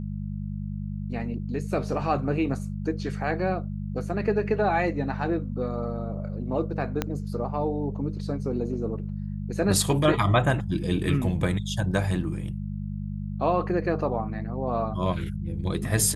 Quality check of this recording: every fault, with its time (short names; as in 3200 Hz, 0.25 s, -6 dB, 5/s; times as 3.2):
hum 50 Hz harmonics 4 -32 dBFS
7.02 pop -11 dBFS